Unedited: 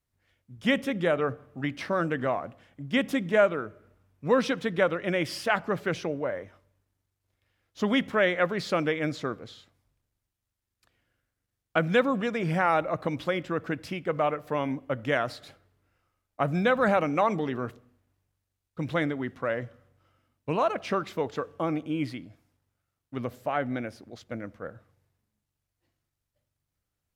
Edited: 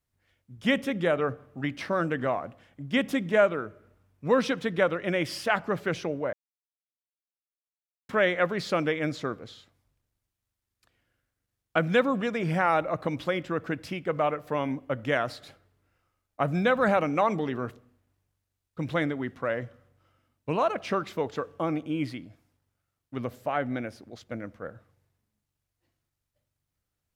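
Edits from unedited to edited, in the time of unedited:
6.33–8.09 s: mute

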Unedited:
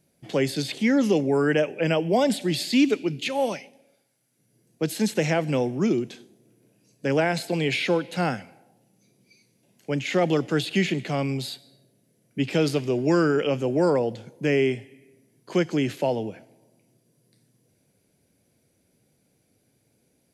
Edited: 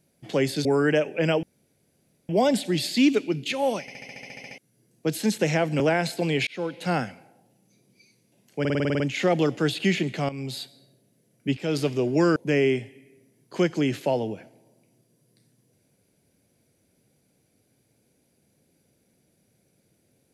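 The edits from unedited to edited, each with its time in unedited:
0.65–1.27 s: delete
2.05 s: insert room tone 0.86 s
3.57 s: stutter in place 0.07 s, 11 plays
5.56–7.11 s: delete
7.78–8.32 s: fade in equal-power
9.91 s: stutter 0.05 s, 9 plays
11.20–11.52 s: fade in, from -13 dB
12.48–12.74 s: fade in, from -13.5 dB
13.27–14.32 s: delete

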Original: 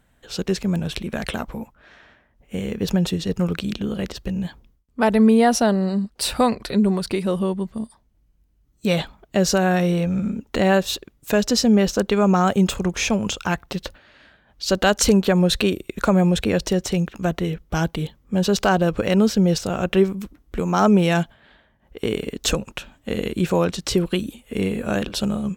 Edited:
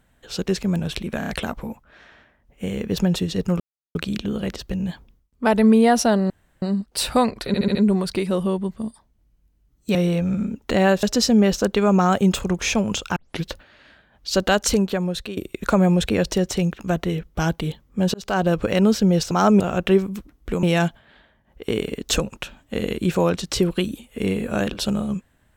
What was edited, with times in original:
1.19 s: stutter 0.03 s, 4 plays
3.51 s: insert silence 0.35 s
5.86 s: insert room tone 0.32 s
6.71 s: stutter 0.07 s, 5 plays
8.91–9.80 s: delete
10.88–11.38 s: delete
13.51 s: tape start 0.28 s
14.73–15.72 s: fade out, to -15 dB
18.49–18.83 s: fade in
20.69–20.98 s: move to 19.66 s

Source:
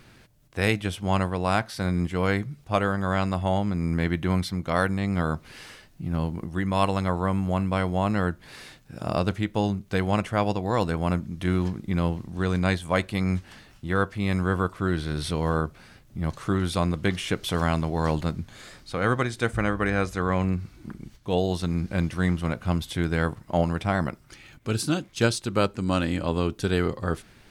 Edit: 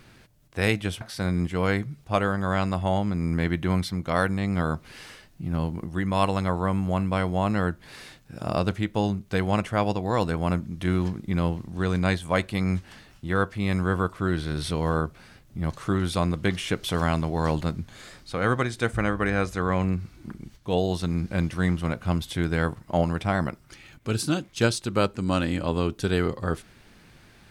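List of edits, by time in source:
1.01–1.61 s: delete

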